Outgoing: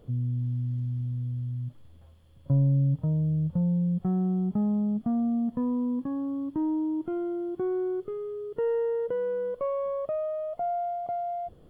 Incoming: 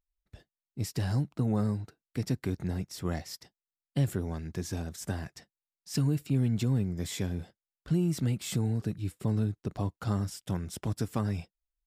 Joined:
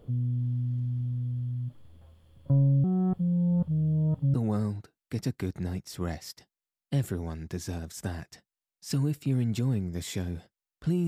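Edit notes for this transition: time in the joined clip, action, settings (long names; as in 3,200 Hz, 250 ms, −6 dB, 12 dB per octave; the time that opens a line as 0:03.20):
outgoing
0:02.84–0:04.34: reverse
0:04.34: continue with incoming from 0:01.38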